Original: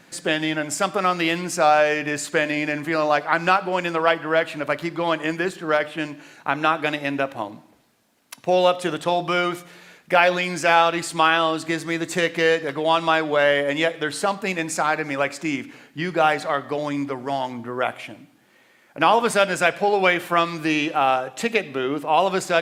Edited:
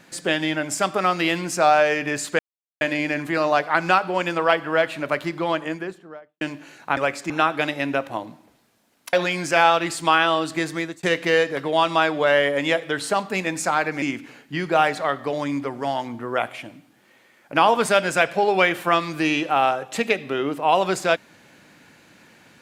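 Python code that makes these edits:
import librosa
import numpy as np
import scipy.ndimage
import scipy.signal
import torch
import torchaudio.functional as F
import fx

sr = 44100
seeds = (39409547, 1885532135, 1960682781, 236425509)

y = fx.studio_fade_out(x, sr, start_s=4.89, length_s=1.1)
y = fx.edit(y, sr, fx.insert_silence(at_s=2.39, length_s=0.42),
    fx.cut(start_s=8.38, length_s=1.87),
    fx.fade_out_span(start_s=11.88, length_s=0.27),
    fx.move(start_s=15.14, length_s=0.33, to_s=6.55), tone=tone)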